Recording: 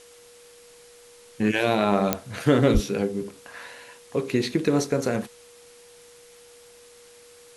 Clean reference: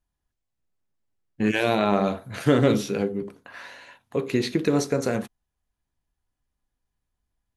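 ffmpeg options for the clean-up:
-filter_complex "[0:a]adeclick=t=4,bandreject=f=480:w=30,asplit=3[a][b][c];[a]afade=t=out:st=2.73:d=0.02[d];[b]highpass=f=140:w=0.5412,highpass=f=140:w=1.3066,afade=t=in:st=2.73:d=0.02,afade=t=out:st=2.85:d=0.02[e];[c]afade=t=in:st=2.85:d=0.02[f];[d][e][f]amix=inputs=3:normalize=0,afwtdn=0.0028"

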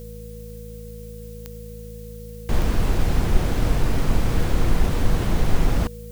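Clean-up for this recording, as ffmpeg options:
-af "adeclick=t=4,bandreject=f=54.1:t=h:w=4,bandreject=f=108.2:t=h:w=4,bandreject=f=162.3:t=h:w=4,bandreject=f=216.4:t=h:w=4,bandreject=f=480:w=30,agate=range=-21dB:threshold=-29dB"

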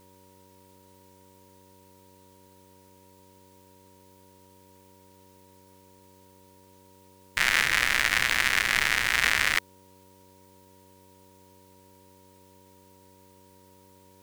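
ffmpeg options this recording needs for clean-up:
-af "bandreject=f=94:t=h:w=4,bandreject=f=188:t=h:w=4,bandreject=f=282:t=h:w=4,bandreject=f=376:t=h:w=4,bandreject=f=470:t=h:w=4,bandreject=f=564:t=h:w=4,bandreject=f=950:w=30,agate=range=-21dB:threshold=-48dB"

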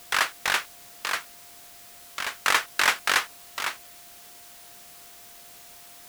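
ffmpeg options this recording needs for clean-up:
-af "bandreject=f=700:w=30,afwtdn=0.004"

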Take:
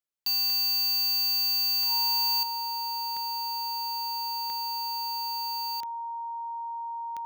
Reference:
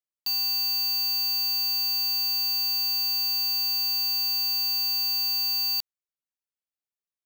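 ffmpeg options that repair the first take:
-af "adeclick=t=4,bandreject=f=930:w=30,asetnsamples=n=441:p=0,asendcmd='2.43 volume volume 9dB',volume=0dB"

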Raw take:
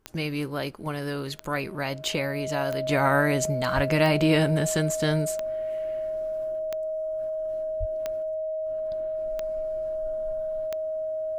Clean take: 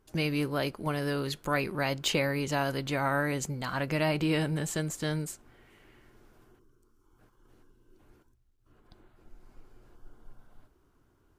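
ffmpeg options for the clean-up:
-filter_complex "[0:a]adeclick=t=4,bandreject=f=630:w=30,asplit=3[a][b][c];[a]afade=t=out:st=3.75:d=0.02[d];[b]highpass=f=140:w=0.5412,highpass=f=140:w=1.3066,afade=t=in:st=3.75:d=0.02,afade=t=out:st=3.87:d=0.02[e];[c]afade=t=in:st=3.87:d=0.02[f];[d][e][f]amix=inputs=3:normalize=0,asplit=3[g][h][i];[g]afade=t=out:st=7.79:d=0.02[j];[h]highpass=f=140:w=0.5412,highpass=f=140:w=1.3066,afade=t=in:st=7.79:d=0.02,afade=t=out:st=7.91:d=0.02[k];[i]afade=t=in:st=7.91:d=0.02[l];[j][k][l]amix=inputs=3:normalize=0,asetnsamples=n=441:p=0,asendcmd='2.89 volume volume -6.5dB',volume=0dB"

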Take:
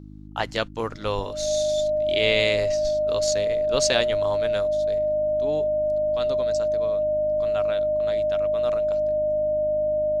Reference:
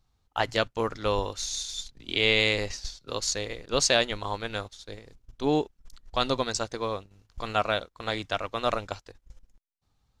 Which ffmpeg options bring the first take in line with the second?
-af "bandreject=f=51.2:t=h:w=4,bandreject=f=102.4:t=h:w=4,bandreject=f=153.6:t=h:w=4,bandreject=f=204.8:t=h:w=4,bandreject=f=256:t=h:w=4,bandreject=f=307.2:t=h:w=4,bandreject=f=610:w=30,asetnsamples=n=441:p=0,asendcmd='4.98 volume volume 8.5dB',volume=0dB"

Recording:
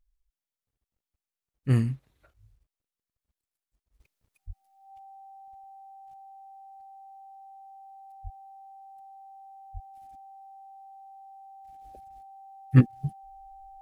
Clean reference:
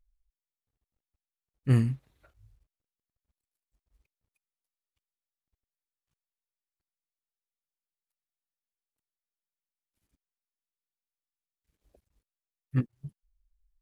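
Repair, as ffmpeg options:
-filter_complex "[0:a]bandreject=f=780:w=30,asplit=3[a][b][c];[a]afade=t=out:st=4.46:d=0.02[d];[b]highpass=f=140:w=0.5412,highpass=f=140:w=1.3066,afade=t=in:st=4.46:d=0.02,afade=t=out:st=4.58:d=0.02[e];[c]afade=t=in:st=4.58:d=0.02[f];[d][e][f]amix=inputs=3:normalize=0,asplit=3[g][h][i];[g]afade=t=out:st=8.23:d=0.02[j];[h]highpass=f=140:w=0.5412,highpass=f=140:w=1.3066,afade=t=in:st=8.23:d=0.02,afade=t=out:st=8.35:d=0.02[k];[i]afade=t=in:st=8.35:d=0.02[l];[j][k][l]amix=inputs=3:normalize=0,asplit=3[m][n][o];[m]afade=t=out:st=9.73:d=0.02[p];[n]highpass=f=140:w=0.5412,highpass=f=140:w=1.3066,afade=t=in:st=9.73:d=0.02,afade=t=out:st=9.85:d=0.02[q];[o]afade=t=in:st=9.85:d=0.02[r];[p][q][r]amix=inputs=3:normalize=0,asetnsamples=n=441:p=0,asendcmd='4 volume volume -10.5dB',volume=0dB"

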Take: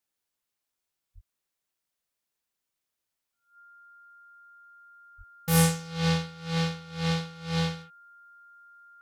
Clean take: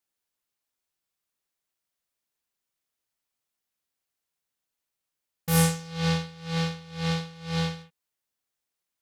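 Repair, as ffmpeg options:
-filter_complex "[0:a]bandreject=f=1.4k:w=30,asplit=3[a][b][c];[a]afade=t=out:st=1.14:d=0.02[d];[b]highpass=f=140:w=0.5412,highpass=f=140:w=1.3066,afade=t=in:st=1.14:d=0.02,afade=t=out:st=1.26:d=0.02[e];[c]afade=t=in:st=1.26:d=0.02[f];[d][e][f]amix=inputs=3:normalize=0,asplit=3[g][h][i];[g]afade=t=out:st=5.17:d=0.02[j];[h]highpass=f=140:w=0.5412,highpass=f=140:w=1.3066,afade=t=in:st=5.17:d=0.02,afade=t=out:st=5.29:d=0.02[k];[i]afade=t=in:st=5.29:d=0.02[l];[j][k][l]amix=inputs=3:normalize=0"

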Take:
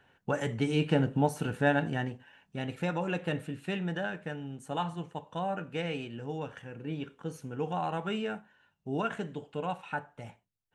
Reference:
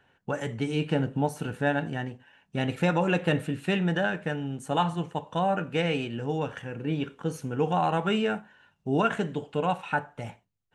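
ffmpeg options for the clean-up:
-af "asetnsamples=n=441:p=0,asendcmd='2.53 volume volume 7.5dB',volume=0dB"

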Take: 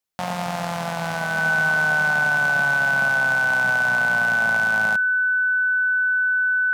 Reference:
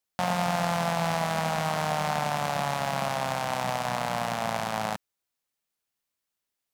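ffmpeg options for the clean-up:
-af "bandreject=f=1.5k:w=30"

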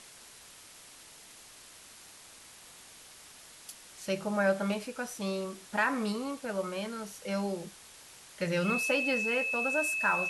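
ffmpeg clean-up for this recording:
-af "bandreject=f=2.6k:w=30,afwtdn=0.0032"

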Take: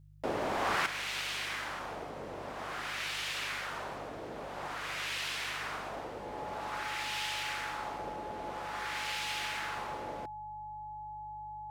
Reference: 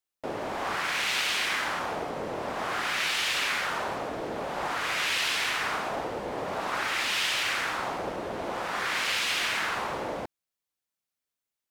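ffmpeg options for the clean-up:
-af "bandreject=f=49.6:t=h:w=4,bandreject=f=99.2:t=h:w=4,bandreject=f=148.8:t=h:w=4,bandreject=f=850:w=30,asetnsamples=n=441:p=0,asendcmd='0.86 volume volume 9dB',volume=0dB"

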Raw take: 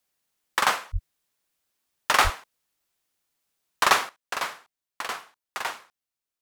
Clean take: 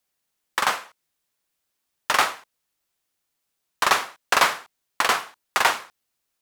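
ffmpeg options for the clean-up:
-filter_complex "[0:a]asplit=3[a][b][c];[a]afade=t=out:st=0.92:d=0.02[d];[b]highpass=f=140:w=0.5412,highpass=f=140:w=1.3066,afade=t=in:st=0.92:d=0.02,afade=t=out:st=1.04:d=0.02[e];[c]afade=t=in:st=1.04:d=0.02[f];[d][e][f]amix=inputs=3:normalize=0,asplit=3[g][h][i];[g]afade=t=out:st=2.23:d=0.02[j];[h]highpass=f=140:w=0.5412,highpass=f=140:w=1.3066,afade=t=in:st=2.23:d=0.02,afade=t=out:st=2.35:d=0.02[k];[i]afade=t=in:st=2.35:d=0.02[l];[j][k][l]amix=inputs=3:normalize=0,asetnsamples=n=441:p=0,asendcmd='4.09 volume volume 11.5dB',volume=0dB"

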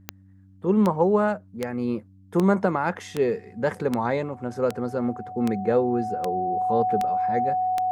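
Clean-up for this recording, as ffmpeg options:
-af "adeclick=t=4,bandreject=f=95.7:t=h:w=4,bandreject=f=191.4:t=h:w=4,bandreject=f=287.1:t=h:w=4,bandreject=f=740:w=30"

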